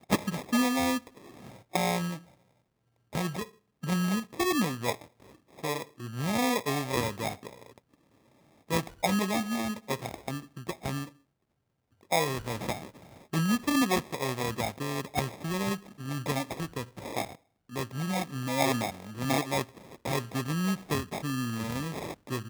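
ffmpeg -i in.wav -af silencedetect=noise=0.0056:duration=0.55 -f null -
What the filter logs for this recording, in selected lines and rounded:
silence_start: 2.21
silence_end: 3.13 | silence_duration: 0.92
silence_start: 7.78
silence_end: 8.70 | silence_duration: 0.92
silence_start: 11.09
silence_end: 12.03 | silence_duration: 0.94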